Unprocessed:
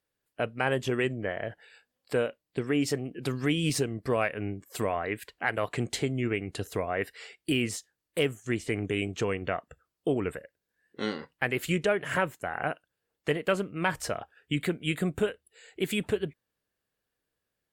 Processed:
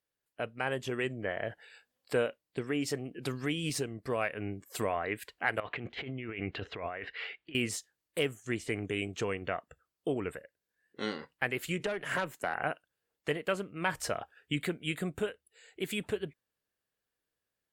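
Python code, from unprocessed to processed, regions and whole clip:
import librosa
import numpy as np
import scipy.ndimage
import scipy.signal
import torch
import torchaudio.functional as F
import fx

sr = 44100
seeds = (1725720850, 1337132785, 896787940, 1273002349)

y = fx.chain(x, sr, fx.tilt_shelf(db=-3.5, hz=1300.0),
    fx.over_compress(threshold_db=-38.0, ratio=-1.0),
    fx.lowpass(hz=3100.0, slope=24), at=(5.6, 7.55))
y = fx.chain(y, sr, fx.highpass(hz=120.0, slope=12),
    fx.tube_stage(drive_db=21.0, bias=0.35),
    fx.band_squash(depth_pct=100), at=(11.8, 12.55))
y = fx.rider(y, sr, range_db=3, speed_s=0.5)
y = fx.low_shelf(y, sr, hz=430.0, db=-3.5)
y = y * 10.0 ** (-2.0 / 20.0)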